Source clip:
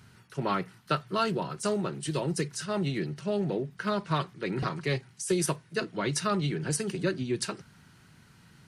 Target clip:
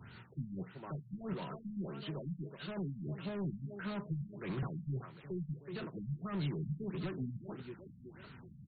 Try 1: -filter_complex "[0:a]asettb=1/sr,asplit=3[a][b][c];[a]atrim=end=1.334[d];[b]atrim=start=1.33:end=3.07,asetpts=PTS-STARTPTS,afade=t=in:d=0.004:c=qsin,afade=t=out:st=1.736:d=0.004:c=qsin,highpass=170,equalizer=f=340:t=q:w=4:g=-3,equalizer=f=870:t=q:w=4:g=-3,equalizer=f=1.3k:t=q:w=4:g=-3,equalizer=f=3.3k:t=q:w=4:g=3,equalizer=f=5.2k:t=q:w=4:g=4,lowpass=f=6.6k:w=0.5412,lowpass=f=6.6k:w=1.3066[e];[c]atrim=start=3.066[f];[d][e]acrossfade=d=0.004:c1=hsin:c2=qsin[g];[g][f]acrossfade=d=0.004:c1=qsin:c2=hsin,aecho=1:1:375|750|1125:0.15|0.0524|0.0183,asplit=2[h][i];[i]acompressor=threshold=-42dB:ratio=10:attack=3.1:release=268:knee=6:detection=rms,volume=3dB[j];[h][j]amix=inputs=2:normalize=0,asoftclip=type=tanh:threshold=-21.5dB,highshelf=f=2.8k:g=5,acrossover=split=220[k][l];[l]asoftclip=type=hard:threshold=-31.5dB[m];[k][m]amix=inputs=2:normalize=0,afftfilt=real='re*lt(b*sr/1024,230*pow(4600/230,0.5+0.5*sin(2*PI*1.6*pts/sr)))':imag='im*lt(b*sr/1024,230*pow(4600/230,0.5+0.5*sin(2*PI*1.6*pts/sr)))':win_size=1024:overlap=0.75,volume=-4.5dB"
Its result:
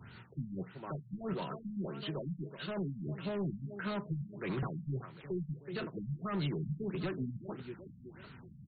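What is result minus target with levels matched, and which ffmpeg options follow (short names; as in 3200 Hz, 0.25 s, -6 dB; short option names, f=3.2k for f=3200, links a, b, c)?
compressor: peak gain reduction -6 dB; hard clip: distortion -4 dB
-filter_complex "[0:a]asettb=1/sr,asplit=3[a][b][c];[a]atrim=end=1.334[d];[b]atrim=start=1.33:end=3.07,asetpts=PTS-STARTPTS,afade=t=in:d=0.004:c=qsin,afade=t=out:st=1.736:d=0.004:c=qsin,highpass=170,equalizer=f=340:t=q:w=4:g=-3,equalizer=f=870:t=q:w=4:g=-3,equalizer=f=1.3k:t=q:w=4:g=-3,equalizer=f=3.3k:t=q:w=4:g=3,equalizer=f=5.2k:t=q:w=4:g=4,lowpass=f=6.6k:w=0.5412,lowpass=f=6.6k:w=1.3066[e];[c]atrim=start=3.066[f];[d][e]acrossfade=d=0.004:c1=hsin:c2=qsin[g];[g][f]acrossfade=d=0.004:c1=qsin:c2=hsin,aecho=1:1:375|750|1125:0.15|0.0524|0.0183,asplit=2[h][i];[i]acompressor=threshold=-48.5dB:ratio=10:attack=3.1:release=268:knee=6:detection=rms,volume=3dB[j];[h][j]amix=inputs=2:normalize=0,asoftclip=type=tanh:threshold=-21.5dB,highshelf=f=2.8k:g=5,acrossover=split=220[k][l];[l]asoftclip=type=hard:threshold=-38dB[m];[k][m]amix=inputs=2:normalize=0,afftfilt=real='re*lt(b*sr/1024,230*pow(4600/230,0.5+0.5*sin(2*PI*1.6*pts/sr)))':imag='im*lt(b*sr/1024,230*pow(4600/230,0.5+0.5*sin(2*PI*1.6*pts/sr)))':win_size=1024:overlap=0.75,volume=-4.5dB"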